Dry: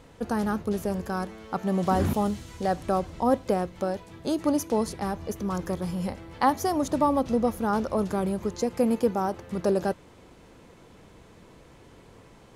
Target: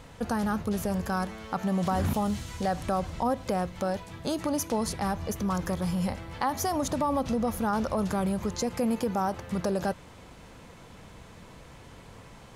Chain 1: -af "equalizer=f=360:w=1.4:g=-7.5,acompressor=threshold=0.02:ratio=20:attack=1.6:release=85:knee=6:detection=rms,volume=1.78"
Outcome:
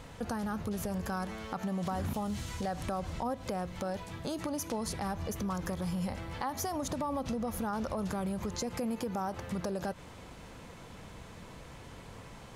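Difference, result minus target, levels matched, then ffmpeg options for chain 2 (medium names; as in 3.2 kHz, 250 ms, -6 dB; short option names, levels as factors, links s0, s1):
compression: peak gain reduction +7.5 dB
-af "equalizer=f=360:w=1.4:g=-7.5,acompressor=threshold=0.0501:ratio=20:attack=1.6:release=85:knee=6:detection=rms,volume=1.78"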